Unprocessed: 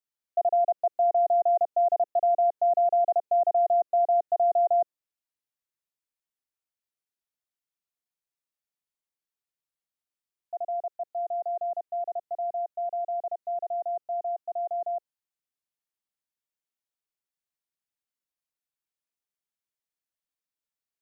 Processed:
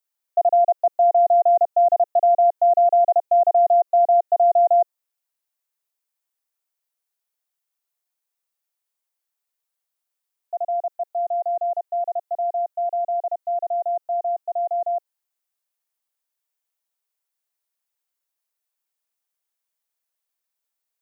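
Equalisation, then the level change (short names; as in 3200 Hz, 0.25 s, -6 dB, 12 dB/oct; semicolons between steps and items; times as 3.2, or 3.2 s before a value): tilt +4 dB/oct; bell 630 Hz +13.5 dB 2.9 oct; -4.5 dB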